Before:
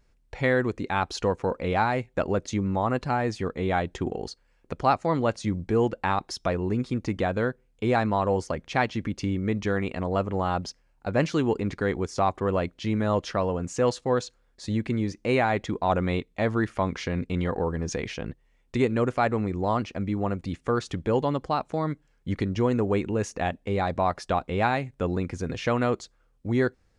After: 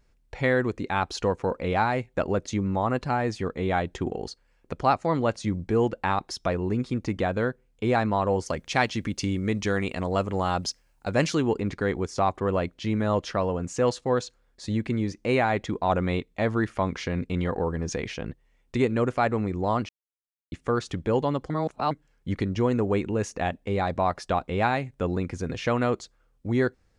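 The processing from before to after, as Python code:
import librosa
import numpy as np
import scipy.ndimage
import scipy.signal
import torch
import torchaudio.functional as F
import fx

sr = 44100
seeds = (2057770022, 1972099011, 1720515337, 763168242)

y = fx.high_shelf(x, sr, hz=3800.0, db=11.5, at=(8.46, 11.35))
y = fx.edit(y, sr, fx.silence(start_s=19.89, length_s=0.63),
    fx.reverse_span(start_s=21.5, length_s=0.41), tone=tone)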